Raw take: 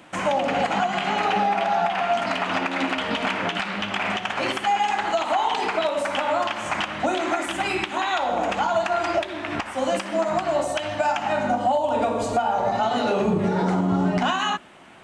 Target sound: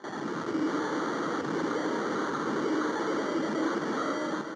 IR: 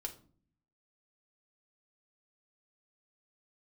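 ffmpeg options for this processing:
-filter_complex "[0:a]alimiter=limit=-22.5dB:level=0:latency=1,dynaudnorm=framelen=240:gausssize=11:maxgain=11.5dB,asetrate=145530,aresample=44100,acrusher=samples=17:mix=1:aa=0.000001,asoftclip=type=tanh:threshold=-28dB,highpass=frequency=170:width=0.5412,highpass=frequency=170:width=1.3066,equalizer=frequency=310:width_type=q:width=4:gain=9,equalizer=frequency=460:width_type=q:width=4:gain=4,equalizer=frequency=690:width_type=q:width=4:gain=-8,equalizer=frequency=1300:width_type=q:width=4:gain=6,equalizer=frequency=2500:width_type=q:width=4:gain=-8,equalizer=frequency=3800:width_type=q:width=4:gain=-8,lowpass=frequency=5800:width=0.5412,lowpass=frequency=5800:width=1.3066,aecho=1:1:895:0.398,asplit=2[link_01][link_02];[1:a]atrim=start_sample=2205,adelay=101[link_03];[link_02][link_03]afir=irnorm=-1:irlink=0,volume=-6dB[link_04];[link_01][link_04]amix=inputs=2:normalize=0,volume=-3.5dB"

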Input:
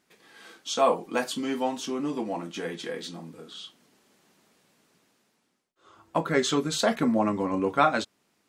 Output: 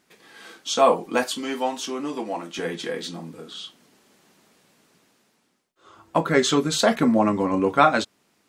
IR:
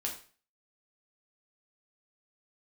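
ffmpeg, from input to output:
-filter_complex "[0:a]asettb=1/sr,asplit=3[link_01][link_02][link_03];[link_01]atrim=end=1.234[link_04];[link_02]atrim=start=1.23:end=2.59,asetpts=PTS-STARTPTS,afade=type=in:duration=0.004:curve=qsin,afade=type=out:start_time=1.356:duration=0.004:curve=qsin,highpass=frequency=440:poles=1[link_05];[link_03]atrim=start=2.586[link_06];[link_04][link_05]acrossfade=duration=0.004:curve1=hsin:curve2=qsin[link_07];[link_07][link_06]acrossfade=duration=0.004:curve1=qsin:curve2=hsin,volume=5dB"

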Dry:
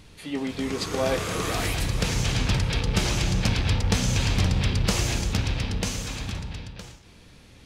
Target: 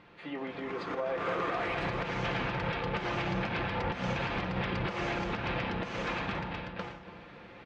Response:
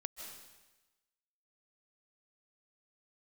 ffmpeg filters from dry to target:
-filter_complex "[0:a]highpass=frequency=790:poles=1,acompressor=threshold=-32dB:ratio=6,lowpass=1800,aemphasis=mode=reproduction:type=50kf,aecho=1:1:5.8:0.38,asplit=2[link_01][link_02];[link_02]adelay=286,lowpass=frequency=1000:poles=1,volume=-12dB,asplit=2[link_03][link_04];[link_04]adelay=286,lowpass=frequency=1000:poles=1,volume=0.52,asplit=2[link_05][link_06];[link_06]adelay=286,lowpass=frequency=1000:poles=1,volume=0.52,asplit=2[link_07][link_08];[link_08]adelay=286,lowpass=frequency=1000:poles=1,volume=0.52,asplit=2[link_09][link_10];[link_10]adelay=286,lowpass=frequency=1000:poles=1,volume=0.52[link_11];[link_01][link_03][link_05][link_07][link_09][link_11]amix=inputs=6:normalize=0,alimiter=level_in=9.5dB:limit=-24dB:level=0:latency=1:release=161,volume=-9.5dB,dynaudnorm=framelen=220:gausssize=9:maxgain=6.5dB,volume=4.5dB"

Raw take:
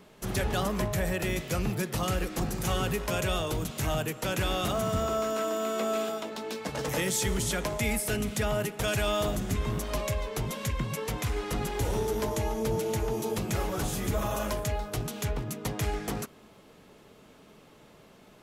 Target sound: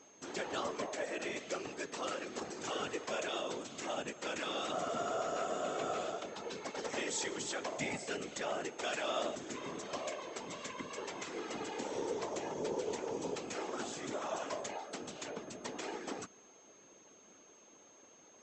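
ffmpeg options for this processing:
ffmpeg -i in.wav -af "afftfilt=real='re*between(b*sr/4096,220,8100)':imag='im*between(b*sr/4096,220,8100)':win_size=4096:overlap=0.75,afftfilt=real='hypot(re,im)*cos(2*PI*random(0))':imag='hypot(re,im)*sin(2*PI*random(1))':win_size=512:overlap=0.75,aeval=exprs='val(0)+0.001*sin(2*PI*6400*n/s)':channel_layout=same,volume=-1dB" out.wav

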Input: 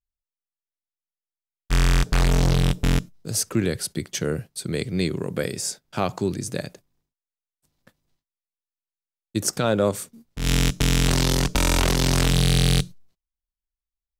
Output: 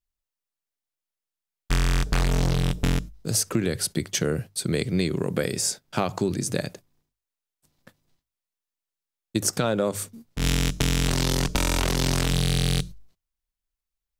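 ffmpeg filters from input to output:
ffmpeg -i in.wav -af "bandreject=frequency=50:width_type=h:width=6,bandreject=frequency=100:width_type=h:width=6,acompressor=threshold=-23dB:ratio=6,volume=3.5dB" out.wav

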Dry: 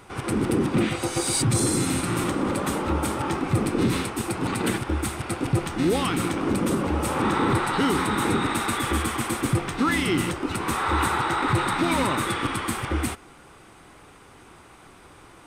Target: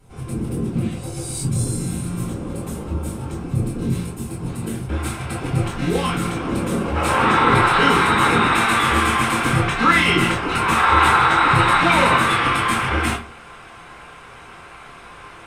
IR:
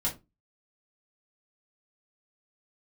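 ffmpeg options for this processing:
-filter_complex "[0:a]asetnsamples=nb_out_samples=441:pad=0,asendcmd='4.89 equalizer g 3.5;6.95 equalizer g 13',equalizer=frequency=1700:width=0.33:gain=-10.5[link_01];[1:a]atrim=start_sample=2205,asetrate=32634,aresample=44100[link_02];[link_01][link_02]afir=irnorm=-1:irlink=0,volume=-8.5dB"

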